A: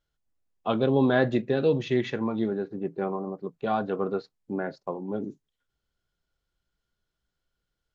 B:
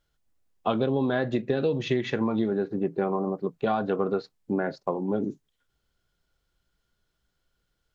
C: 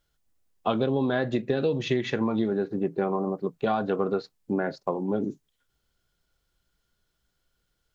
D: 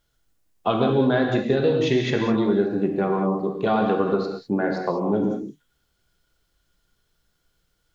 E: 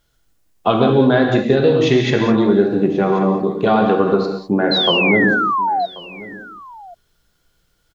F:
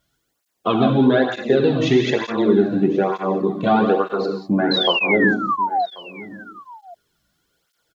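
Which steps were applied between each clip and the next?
compressor 12:1, threshold -27 dBFS, peak gain reduction 11.5 dB; gain +6 dB
high shelf 5100 Hz +4.5 dB
non-linear reverb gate 0.23 s flat, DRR 1.5 dB; gain +3 dB
painted sound fall, 4.71–5.86, 670–4200 Hz -24 dBFS; echo 1.085 s -19.5 dB; gain +6.5 dB
tape flanging out of phase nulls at 1.1 Hz, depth 2.5 ms

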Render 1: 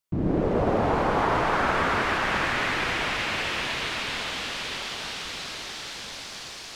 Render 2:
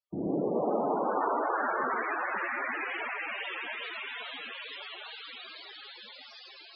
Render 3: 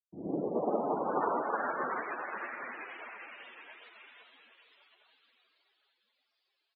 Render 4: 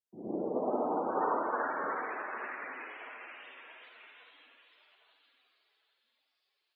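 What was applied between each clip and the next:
three-band isolator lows -20 dB, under 180 Hz, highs -13 dB, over 6900 Hz; wow and flutter 91 cents; loudest bins only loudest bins 32; gain -4 dB
on a send: feedback echo 0.798 s, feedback 37%, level -10 dB; on the sum: upward expander 2.5:1, over -48 dBFS
frequency shift +22 Hz; on a send at -2 dB: reverb RT60 0.50 s, pre-delay 50 ms; on the sum: gain -2.5 dB

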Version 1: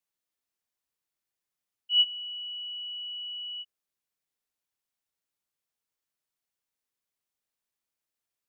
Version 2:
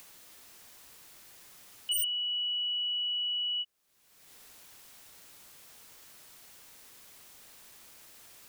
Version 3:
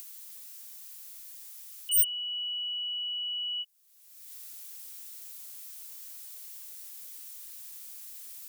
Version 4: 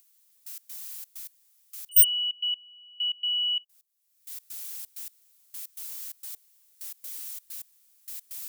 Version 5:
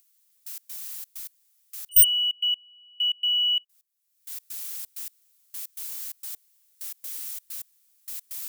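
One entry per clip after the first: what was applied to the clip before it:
upward compressor, threshold -36 dBFS; wavefolder -29.5 dBFS; gain +5 dB
vocal rider; pre-emphasis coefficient 0.9; gain +6.5 dB
step gate "....x.xxx.x" 130 bpm -24 dB; gain +7 dB
HPF 930 Hz 24 dB/oct; sample leveller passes 1

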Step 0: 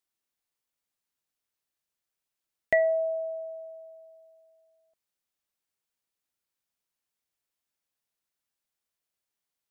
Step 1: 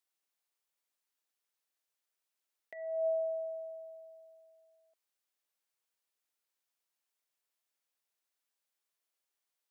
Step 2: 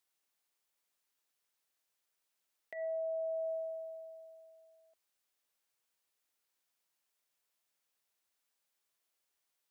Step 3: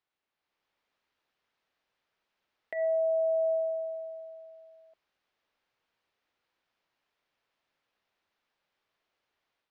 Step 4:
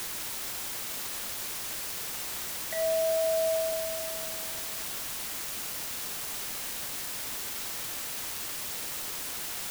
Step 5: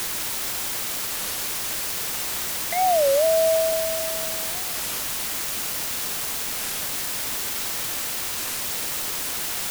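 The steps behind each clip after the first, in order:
HPF 370 Hz 12 dB/oct; negative-ratio compressor -29 dBFS, ratio -0.5; gain -4 dB
limiter -37 dBFS, peak gain reduction 10.5 dB; gain +3.5 dB
AGC gain up to 7.5 dB; air absorption 260 m; gain +3 dB
requantised 6-bit, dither triangular
record warp 33 1/3 rpm, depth 250 cents; gain +8 dB

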